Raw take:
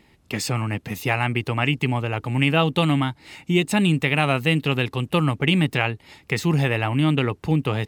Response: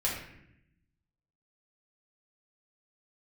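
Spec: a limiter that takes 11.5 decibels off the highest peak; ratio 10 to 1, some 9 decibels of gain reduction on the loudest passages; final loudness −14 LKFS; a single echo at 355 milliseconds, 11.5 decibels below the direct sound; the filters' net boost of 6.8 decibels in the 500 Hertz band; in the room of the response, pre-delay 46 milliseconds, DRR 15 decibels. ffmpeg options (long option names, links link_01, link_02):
-filter_complex "[0:a]equalizer=frequency=500:width_type=o:gain=8.5,acompressor=threshold=-20dB:ratio=10,alimiter=limit=-18.5dB:level=0:latency=1,aecho=1:1:355:0.266,asplit=2[link_01][link_02];[1:a]atrim=start_sample=2205,adelay=46[link_03];[link_02][link_03]afir=irnorm=-1:irlink=0,volume=-22dB[link_04];[link_01][link_04]amix=inputs=2:normalize=0,volume=15.5dB"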